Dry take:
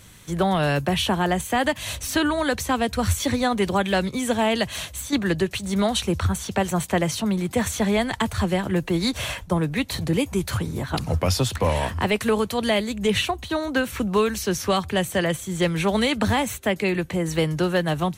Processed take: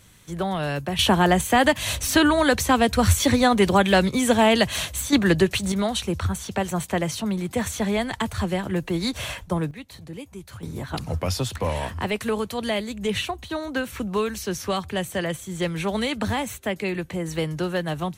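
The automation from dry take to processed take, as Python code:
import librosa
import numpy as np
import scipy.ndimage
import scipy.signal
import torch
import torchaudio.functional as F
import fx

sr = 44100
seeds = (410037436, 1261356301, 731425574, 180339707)

y = fx.gain(x, sr, db=fx.steps((0.0, -5.0), (0.99, 4.0), (5.72, -2.5), (9.71, -15.0), (10.63, -4.0)))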